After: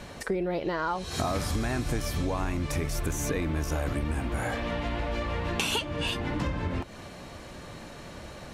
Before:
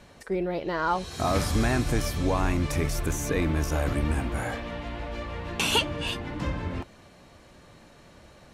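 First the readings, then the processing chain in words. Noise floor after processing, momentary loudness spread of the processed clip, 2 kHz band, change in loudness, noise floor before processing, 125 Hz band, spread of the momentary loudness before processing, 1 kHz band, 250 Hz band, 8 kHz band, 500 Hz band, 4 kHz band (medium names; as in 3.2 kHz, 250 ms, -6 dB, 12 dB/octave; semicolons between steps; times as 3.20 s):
-44 dBFS, 14 LU, -2.0 dB, -2.5 dB, -53 dBFS, -2.5 dB, 11 LU, -2.5 dB, -2.5 dB, -2.0 dB, -2.0 dB, -3.0 dB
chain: compression 6:1, threshold -36 dBFS, peak gain reduction 16.5 dB; trim +9 dB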